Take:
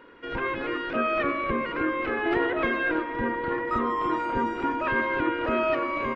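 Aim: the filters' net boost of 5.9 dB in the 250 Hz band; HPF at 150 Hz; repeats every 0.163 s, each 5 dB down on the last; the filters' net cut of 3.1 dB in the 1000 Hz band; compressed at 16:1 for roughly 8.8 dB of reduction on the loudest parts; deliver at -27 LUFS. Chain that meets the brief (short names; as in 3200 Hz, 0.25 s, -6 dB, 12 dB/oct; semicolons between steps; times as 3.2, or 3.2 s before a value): HPF 150 Hz; bell 250 Hz +8.5 dB; bell 1000 Hz -4 dB; compressor 16:1, threshold -27 dBFS; feedback echo 0.163 s, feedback 56%, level -5 dB; gain +3 dB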